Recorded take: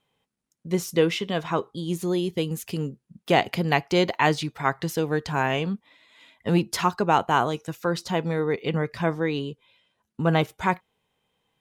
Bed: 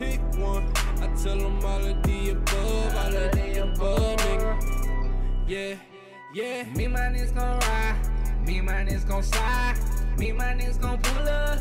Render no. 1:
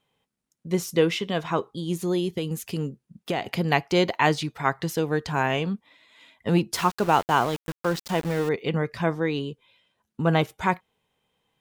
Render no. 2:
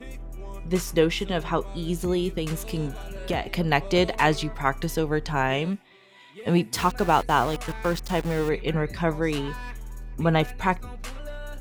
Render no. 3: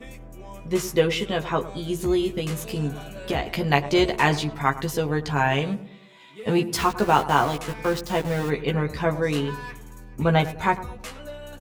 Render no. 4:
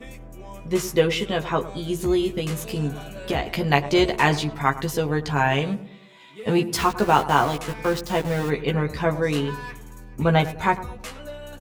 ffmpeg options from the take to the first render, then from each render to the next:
ffmpeg -i in.wav -filter_complex "[0:a]asettb=1/sr,asplit=3[link_01][link_02][link_03];[link_01]atrim=end=2.294[link_04];[link_02]atrim=start=2.29:end=3.55,asetpts=PTS-STARTPTS,afade=type=in:duration=0.004:curve=qsin,afade=type=out:start_time=1.256:duration=0.004:curve=qsin,acompressor=threshold=-22dB:ratio=6:attack=3.2:release=140:knee=1:detection=peak[link_05];[link_03]atrim=start=3.546[link_06];[link_04][link_05]acrossfade=duration=0.004:curve1=hsin:curve2=qsin[link_07];[link_07][link_06]acrossfade=duration=0.004:curve1=qsin:curve2=hsin,asettb=1/sr,asplit=3[link_08][link_09][link_10];[link_08]atrim=end=6.754[link_11];[link_09]atrim=start=6.75:end=8.49,asetpts=PTS-STARTPTS,afade=type=in:duration=0.004:curve=qsin,afade=type=out:start_time=1.736:duration=0.004:curve=qsin,aeval=exprs='val(0)*gte(abs(val(0)),0.0266)':channel_layout=same[link_12];[link_10]atrim=start=8.486[link_13];[link_11][link_12]acrossfade=duration=0.004:curve1=hsin:curve2=qsin[link_14];[link_14][link_13]acrossfade=duration=0.004:curve1=qsin:curve2=hsin" out.wav
ffmpeg -i in.wav -i bed.wav -filter_complex "[1:a]volume=-12dB[link_01];[0:a][link_01]amix=inputs=2:normalize=0" out.wav
ffmpeg -i in.wav -filter_complex "[0:a]asplit=2[link_01][link_02];[link_02]adelay=14,volume=-3.5dB[link_03];[link_01][link_03]amix=inputs=2:normalize=0,asplit=2[link_04][link_05];[link_05]adelay=105,lowpass=frequency=940:poles=1,volume=-13dB,asplit=2[link_06][link_07];[link_07]adelay=105,lowpass=frequency=940:poles=1,volume=0.46,asplit=2[link_08][link_09];[link_09]adelay=105,lowpass=frequency=940:poles=1,volume=0.46,asplit=2[link_10][link_11];[link_11]adelay=105,lowpass=frequency=940:poles=1,volume=0.46,asplit=2[link_12][link_13];[link_13]adelay=105,lowpass=frequency=940:poles=1,volume=0.46[link_14];[link_04][link_06][link_08][link_10][link_12][link_14]amix=inputs=6:normalize=0" out.wav
ffmpeg -i in.wav -af "volume=1dB" out.wav

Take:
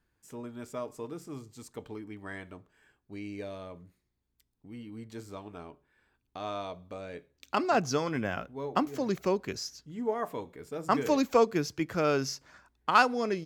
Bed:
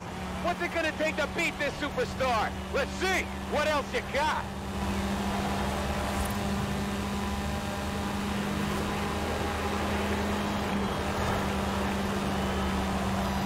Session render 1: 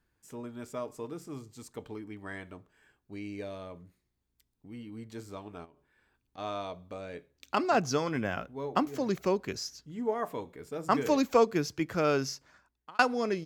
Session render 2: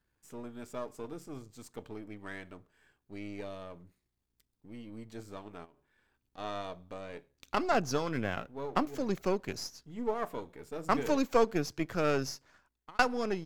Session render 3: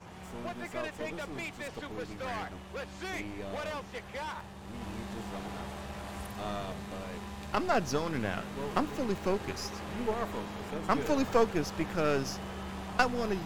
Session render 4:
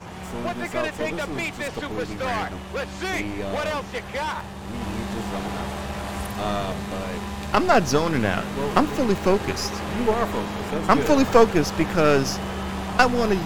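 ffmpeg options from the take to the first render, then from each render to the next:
ffmpeg -i in.wav -filter_complex "[0:a]asplit=3[link_01][link_02][link_03];[link_01]afade=type=out:start_time=5.64:duration=0.02[link_04];[link_02]acompressor=threshold=-55dB:ratio=6:attack=3.2:release=140:knee=1:detection=peak,afade=type=in:start_time=5.64:duration=0.02,afade=type=out:start_time=6.37:duration=0.02[link_05];[link_03]afade=type=in:start_time=6.37:duration=0.02[link_06];[link_04][link_05][link_06]amix=inputs=3:normalize=0,asplit=2[link_07][link_08];[link_07]atrim=end=12.99,asetpts=PTS-STARTPTS,afade=type=out:start_time=12.17:duration=0.82[link_09];[link_08]atrim=start=12.99,asetpts=PTS-STARTPTS,afade=type=in:duration=0.004:curve=hsin[link_10];[link_09][link_10]concat=n=2:v=0:a=1" out.wav
ffmpeg -i in.wav -af "aeval=exprs='if(lt(val(0),0),0.447*val(0),val(0))':channel_layout=same" out.wav
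ffmpeg -i in.wav -i bed.wav -filter_complex "[1:a]volume=-11dB[link_01];[0:a][link_01]amix=inputs=2:normalize=0" out.wav
ffmpeg -i in.wav -af "volume=11dB,alimiter=limit=-1dB:level=0:latency=1" out.wav

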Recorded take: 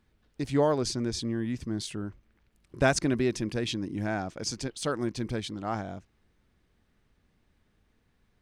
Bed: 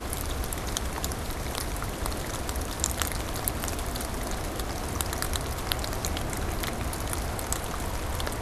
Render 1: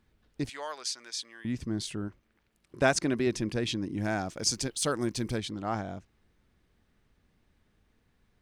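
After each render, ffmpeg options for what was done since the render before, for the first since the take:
ffmpeg -i in.wav -filter_complex "[0:a]asettb=1/sr,asplit=3[link_01][link_02][link_03];[link_01]atrim=end=0.494[link_04];[link_02]atrim=start=0.49:end=1.45,asetpts=PTS-STARTPTS,afade=type=in:duration=0.004:curve=qsin,afade=type=out:start_time=0.956:duration=0.004:curve=qsin,highpass=1400[link_05];[link_03]atrim=start=1.446[link_06];[link_04][link_05]acrossfade=duration=0.004:curve1=hsin:curve2=qsin[link_07];[link_07][link_06]acrossfade=duration=0.004:curve1=qsin:curve2=hsin,asettb=1/sr,asplit=3[link_08][link_09][link_10];[link_08]atrim=end=2.084[link_11];[link_09]atrim=start=2.08:end=3.27,asetpts=PTS-STARTPTS,afade=type=in:duration=0.004:curve=qsin,afade=type=out:start_time=1.186:duration=0.004:curve=qsin,lowshelf=frequency=120:gain=-11[link_12];[link_10]atrim=start=3.266[link_13];[link_11][link_12]acrossfade=duration=0.004:curve1=hsin:curve2=qsin[link_14];[link_14][link_13]acrossfade=duration=0.004:curve1=qsin:curve2=hsin,asettb=1/sr,asplit=3[link_15][link_16][link_17];[link_15]atrim=end=4.044[link_18];[link_16]atrim=start=4.04:end=5.38,asetpts=PTS-STARTPTS,afade=type=in:duration=0.004:curve=qsin,afade=type=out:start_time=1.336:duration=0.004:curve=qsin,highshelf=frequency=5500:gain=11.5[link_19];[link_17]atrim=start=5.376[link_20];[link_18][link_19]acrossfade=duration=0.004:curve1=hsin:curve2=qsin[link_21];[link_21][link_20]acrossfade=duration=0.004:curve1=qsin:curve2=hsin" out.wav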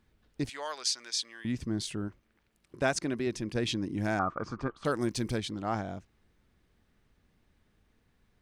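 ffmpeg -i in.wav -filter_complex "[0:a]asettb=1/sr,asplit=3[link_01][link_02][link_03];[link_01]atrim=end=0.654[link_04];[link_02]atrim=start=0.65:end=1.52,asetpts=PTS-STARTPTS,afade=type=in:duration=0.004:curve=qsin,afade=type=out:start_time=0.866:duration=0.004:curve=qsin,equalizer=frequency=4500:width=0.57:gain=4.5[link_05];[link_03]atrim=start=1.516[link_06];[link_04][link_05]acrossfade=duration=0.004:curve1=hsin:curve2=qsin[link_07];[link_07][link_06]acrossfade=duration=0.004:curve1=qsin:curve2=hsin,asettb=1/sr,asplit=3[link_08][link_09][link_10];[link_08]atrim=end=4.194[link_11];[link_09]atrim=start=4.19:end=4.85,asetpts=PTS-STARTPTS,afade=type=in:duration=0.004:curve=qsin,afade=type=out:start_time=0.656:duration=0.004:curve=qsin,lowpass=frequency=1200:width_type=q:width=14[link_12];[link_10]atrim=start=4.846[link_13];[link_11][link_12]acrossfade=duration=0.004:curve1=hsin:curve2=qsin[link_14];[link_14][link_13]acrossfade=duration=0.004:curve1=qsin:curve2=hsin,asplit=3[link_15][link_16][link_17];[link_15]atrim=end=2.762[link_18];[link_16]atrim=start=2.758:end=3.552,asetpts=PTS-STARTPTS,volume=-4dB[link_19];[link_17]atrim=start=3.548[link_20];[link_18][link_19]acrossfade=duration=0.004:curve1=hsin:curve2=hsin[link_21];[link_21][link_20]acrossfade=duration=0.004:curve1=hsin:curve2=hsin" out.wav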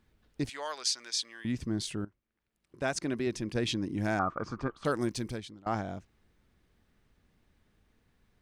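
ffmpeg -i in.wav -filter_complex "[0:a]asplit=3[link_01][link_02][link_03];[link_01]atrim=end=2.05,asetpts=PTS-STARTPTS,afade=type=out:start_time=2.046:duration=0.004:curve=hsin:silence=0.141254[link_04];[link_02]atrim=start=2.05:end=5.66,asetpts=PTS-STARTPTS,afade=type=in:duration=1.06:curve=qua:silence=0.141254,afade=type=out:start_time=2.95:duration=0.66:silence=0.0749894[link_05];[link_03]atrim=start=5.66,asetpts=PTS-STARTPTS,afade=type=in:duration=0.004:curve=hsin:silence=0.0749894[link_06];[link_04][link_05][link_06]concat=n=3:v=0:a=1" out.wav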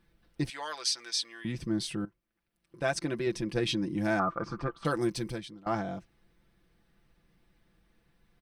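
ffmpeg -i in.wav -af "equalizer=frequency=6900:width=7.2:gain=-9.5,aecho=1:1:5.9:0.65" out.wav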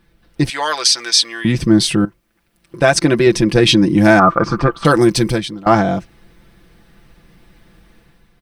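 ffmpeg -i in.wav -af "dynaudnorm=framelen=100:gausssize=9:maxgain=8dB,alimiter=level_in=11.5dB:limit=-1dB:release=50:level=0:latency=1" out.wav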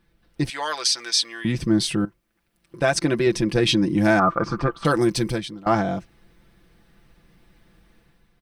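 ffmpeg -i in.wav -af "volume=-8dB" out.wav

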